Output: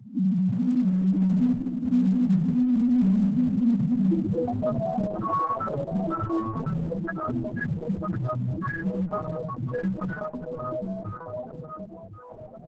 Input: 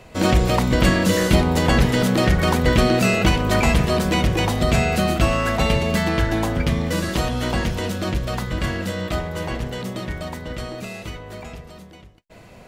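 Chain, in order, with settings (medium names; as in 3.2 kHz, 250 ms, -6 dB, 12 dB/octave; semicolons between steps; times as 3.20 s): high-pass 100 Hz 24 dB/octave; high-order bell 4.8 kHz -14 dB 1.1 oct; in parallel at -1 dB: compression 5:1, threshold -30 dBFS, peak gain reduction 15.5 dB; 1.53–1.93 s: on the sum: integer overflow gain 16 dB; low-pass sweep 250 Hz -> 1.4 kHz, 4.06–4.76 s; overload inside the chain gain 19.5 dB; loudest bins only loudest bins 2; on a send: delay 1048 ms -9.5 dB; on the sum: trim +2.5 dB; Opus 10 kbps 48 kHz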